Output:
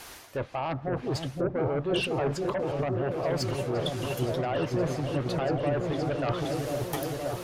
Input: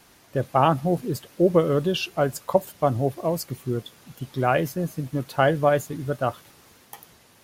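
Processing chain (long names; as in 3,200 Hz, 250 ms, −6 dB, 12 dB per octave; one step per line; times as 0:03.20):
treble cut that deepens with the level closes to 1,100 Hz, closed at −17 dBFS
parametric band 180 Hz −11.5 dB 1.5 octaves
brickwall limiter −17 dBFS, peak gain reduction 9 dB
reversed playback
downward compressor 5 to 1, threshold −36 dBFS, peak gain reduction 13.5 dB
reversed playback
harmonic generator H 5 −6 dB, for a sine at −24 dBFS
echo whose low-pass opens from repeat to repeat 519 ms, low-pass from 400 Hz, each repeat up 1 octave, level 0 dB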